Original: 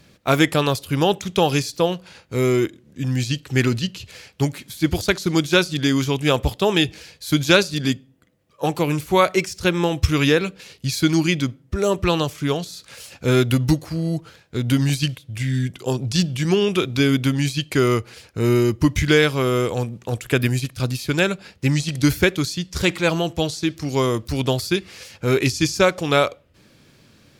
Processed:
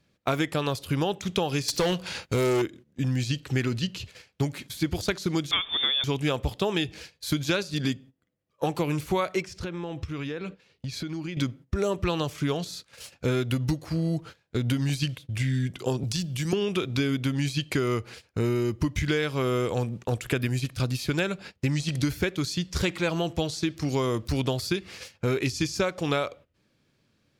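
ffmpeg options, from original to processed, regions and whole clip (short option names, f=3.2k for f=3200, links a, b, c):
-filter_complex "[0:a]asettb=1/sr,asplit=3[a][b][c];[a]atrim=end=1.684[d];[b]atrim=start=1.68:end=2.62,asetpts=PTS-STARTPTS,afade=t=in:d=0.004:c=qsin,afade=t=out:st=0.936:d=0.004:c=qsin,highshelf=f=2.2k:g=6.5,acontrast=74,asoftclip=type=hard:threshold=-14dB[e];[c]atrim=start=2.616[f];[d][e]acrossfade=d=0.004:c1=hsin:c2=qsin[g];[g][f]acrossfade=d=0.004:c1=qsin:c2=hsin,asettb=1/sr,asplit=3[h][i][j];[h]atrim=end=5.514[k];[i]atrim=start=5.51:end=6.04,asetpts=PTS-STARTPTS,afade=t=in:d=0.004:c=qsin,afade=t=out:st=0.526:d=0.004:c=qsin,aeval=exprs='val(0)+0.5*0.0501*sgn(val(0))':c=same,lowpass=f=3.1k:t=q:w=0.5098,lowpass=f=3.1k:t=q:w=0.6013,lowpass=f=3.1k:t=q:w=0.9,lowpass=f=3.1k:t=q:w=2.563,afreqshift=-3700[l];[j]atrim=start=6.036[m];[k][l]acrossfade=d=0.004:c1=hsin:c2=qsin[n];[n][m]acrossfade=d=0.004:c1=qsin:c2=hsin,asettb=1/sr,asplit=3[o][p][q];[o]atrim=end=9.424[r];[p]atrim=start=9.42:end=11.37,asetpts=PTS-STARTPTS,afade=t=in:d=0.004:c=qsin,afade=t=out:st=1.946:d=0.004:c=qsin,lowpass=f=2.9k:p=1,acompressor=threshold=-29dB:ratio=16:attack=3.2:release=140:knee=1:detection=peak[s];[q]atrim=start=11.366[t];[r][s]acrossfade=d=0.004:c1=hsin:c2=qsin[u];[u][t]acrossfade=d=0.004:c1=qsin:c2=hsin,asettb=1/sr,asplit=3[v][w][x];[v]atrim=end=16.034[y];[w]atrim=start=16.03:end=16.53,asetpts=PTS-STARTPTS,afade=t=in:d=0.004:c=qsin,afade=t=out:st=0.496:d=0.004:c=qsin,aemphasis=mode=production:type=50kf,acrossover=split=130|6400[z][aa][ab];[z]acompressor=threshold=-34dB:ratio=4[ac];[aa]acompressor=threshold=-31dB:ratio=4[ad];[ab]acompressor=threshold=-39dB:ratio=4[ae];[ac][ad][ae]amix=inputs=3:normalize=0[af];[x]atrim=start=16.526[ag];[y][af]acrossfade=d=0.004:c1=hsin:c2=qsin[ah];[ah][ag]acrossfade=d=0.004:c1=qsin:c2=hsin,agate=range=-16dB:threshold=-39dB:ratio=16:detection=peak,highshelf=f=7.3k:g=-5.5,acompressor=threshold=-23dB:ratio=6"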